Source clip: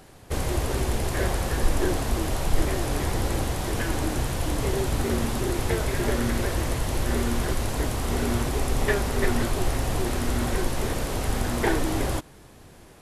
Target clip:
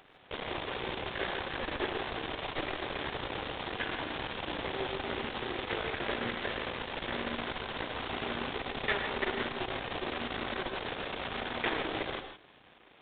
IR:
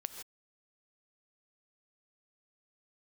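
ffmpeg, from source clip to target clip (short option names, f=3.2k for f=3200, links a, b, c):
-filter_complex "[0:a]aeval=exprs='max(val(0),0)':c=same,aemphasis=mode=production:type=riaa,aresample=8000,aresample=44100[a];[1:a]atrim=start_sample=2205[b];[a][b]afir=irnorm=-1:irlink=0"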